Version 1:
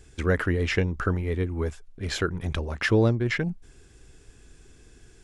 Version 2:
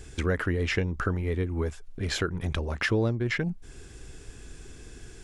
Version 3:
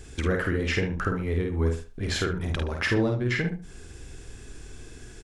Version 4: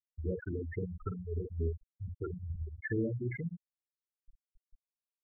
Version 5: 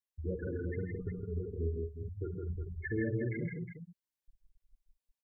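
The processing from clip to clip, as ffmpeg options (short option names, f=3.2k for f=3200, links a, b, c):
-af "acompressor=threshold=-39dB:ratio=2,volume=7dB"
-filter_complex "[0:a]asplit=2[a][b];[b]adelay=49,volume=-4dB[c];[a][c]amix=inputs=2:normalize=0,asplit=2[d][e];[e]adelay=73,lowpass=f=2.2k:p=1,volume=-9dB,asplit=2[f][g];[g]adelay=73,lowpass=f=2.2k:p=1,volume=0.2,asplit=2[h][i];[i]adelay=73,lowpass=f=2.2k:p=1,volume=0.2[j];[d][f][h][j]amix=inputs=4:normalize=0"
-af "afftfilt=real='re*gte(hypot(re,im),0.251)':imag='im*gte(hypot(re,im),0.251)':win_size=1024:overlap=0.75,volume=-8dB"
-filter_complex "[0:a]asuperstop=centerf=1300:order=12:qfactor=6.5,asplit=2[a][b];[b]aecho=0:1:70|134|163|221|362:0.112|0.266|0.708|0.106|0.335[c];[a][c]amix=inputs=2:normalize=0,volume=-1.5dB"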